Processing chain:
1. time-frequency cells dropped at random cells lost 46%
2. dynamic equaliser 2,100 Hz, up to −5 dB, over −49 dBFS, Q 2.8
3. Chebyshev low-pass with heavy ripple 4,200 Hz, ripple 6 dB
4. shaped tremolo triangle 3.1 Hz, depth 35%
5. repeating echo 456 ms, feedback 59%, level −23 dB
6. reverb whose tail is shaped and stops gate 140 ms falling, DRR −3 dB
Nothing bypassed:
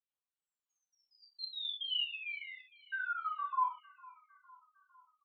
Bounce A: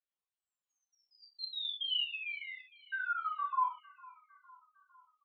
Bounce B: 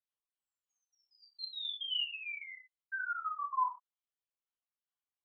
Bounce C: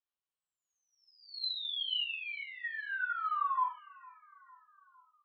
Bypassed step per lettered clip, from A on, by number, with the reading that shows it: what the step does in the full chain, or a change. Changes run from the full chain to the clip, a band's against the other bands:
4, change in momentary loudness spread −4 LU
5, change in momentary loudness spread −6 LU
1, change in crest factor −2.0 dB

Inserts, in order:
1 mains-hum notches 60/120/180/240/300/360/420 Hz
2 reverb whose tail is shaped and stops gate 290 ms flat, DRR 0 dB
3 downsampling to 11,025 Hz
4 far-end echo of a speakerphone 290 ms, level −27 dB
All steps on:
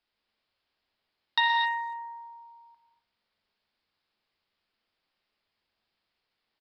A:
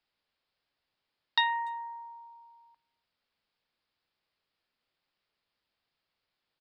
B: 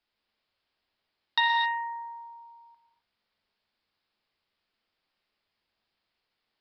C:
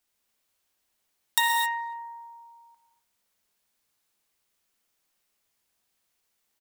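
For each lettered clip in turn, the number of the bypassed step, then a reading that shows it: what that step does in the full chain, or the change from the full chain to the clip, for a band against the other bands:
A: 2, change in momentary loudness spread +2 LU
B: 4, change in momentary loudness spread +2 LU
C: 3, change in crest factor +7.0 dB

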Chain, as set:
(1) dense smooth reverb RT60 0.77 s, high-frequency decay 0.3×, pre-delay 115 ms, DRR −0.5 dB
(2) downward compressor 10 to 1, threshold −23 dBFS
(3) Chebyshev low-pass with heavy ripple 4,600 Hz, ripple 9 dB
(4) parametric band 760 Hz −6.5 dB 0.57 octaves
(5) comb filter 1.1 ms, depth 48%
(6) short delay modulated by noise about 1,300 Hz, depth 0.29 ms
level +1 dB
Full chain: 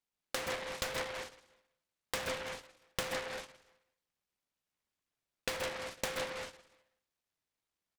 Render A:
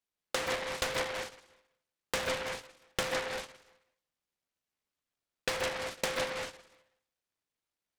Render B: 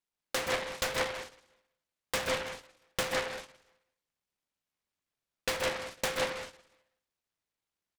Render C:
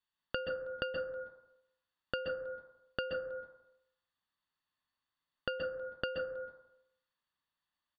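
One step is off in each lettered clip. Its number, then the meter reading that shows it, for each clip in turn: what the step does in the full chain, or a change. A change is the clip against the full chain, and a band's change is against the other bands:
5, change in crest factor −2.0 dB
2, average gain reduction 3.0 dB
6, 500 Hz band +6.0 dB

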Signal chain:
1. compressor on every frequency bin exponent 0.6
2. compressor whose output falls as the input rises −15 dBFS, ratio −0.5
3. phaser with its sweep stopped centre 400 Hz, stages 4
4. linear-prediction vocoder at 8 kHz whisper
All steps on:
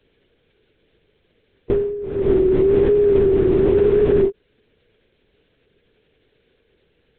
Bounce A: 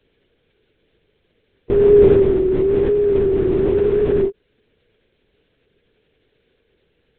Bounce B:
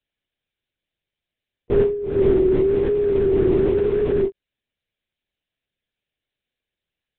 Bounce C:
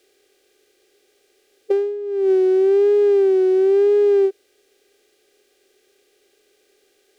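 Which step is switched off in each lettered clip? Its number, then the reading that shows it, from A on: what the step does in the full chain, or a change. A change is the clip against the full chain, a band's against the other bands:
2, change in crest factor +1.5 dB
1, change in momentary loudness spread −3 LU
4, change in crest factor −4.0 dB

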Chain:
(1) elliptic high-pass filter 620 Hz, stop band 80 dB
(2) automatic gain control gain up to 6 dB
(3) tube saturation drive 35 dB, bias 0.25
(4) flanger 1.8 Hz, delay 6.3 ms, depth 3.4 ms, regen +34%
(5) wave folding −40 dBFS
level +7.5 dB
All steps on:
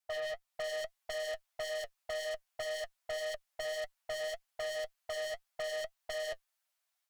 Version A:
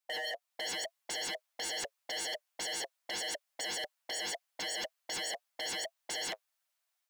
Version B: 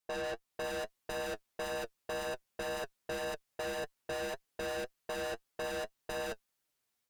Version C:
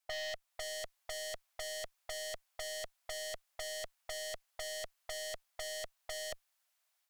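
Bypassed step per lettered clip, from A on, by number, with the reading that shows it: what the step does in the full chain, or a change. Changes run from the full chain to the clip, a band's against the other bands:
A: 3, 500 Hz band −13.5 dB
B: 1, 1 kHz band +6.5 dB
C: 4, 8 kHz band +9.0 dB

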